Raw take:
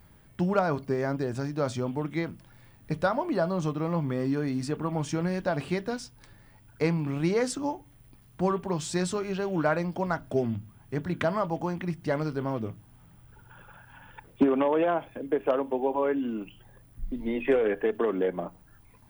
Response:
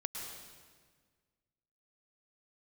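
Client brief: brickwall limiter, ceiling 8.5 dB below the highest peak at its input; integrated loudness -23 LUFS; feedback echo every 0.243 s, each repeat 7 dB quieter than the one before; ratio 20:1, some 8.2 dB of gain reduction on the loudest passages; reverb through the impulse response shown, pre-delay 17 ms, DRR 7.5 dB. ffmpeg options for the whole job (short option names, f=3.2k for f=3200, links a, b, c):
-filter_complex "[0:a]acompressor=threshold=-26dB:ratio=20,alimiter=level_in=0.5dB:limit=-24dB:level=0:latency=1,volume=-0.5dB,aecho=1:1:243|486|729|972|1215:0.447|0.201|0.0905|0.0407|0.0183,asplit=2[a][b];[1:a]atrim=start_sample=2205,adelay=17[c];[b][c]afir=irnorm=-1:irlink=0,volume=-8dB[d];[a][d]amix=inputs=2:normalize=0,volume=10.5dB"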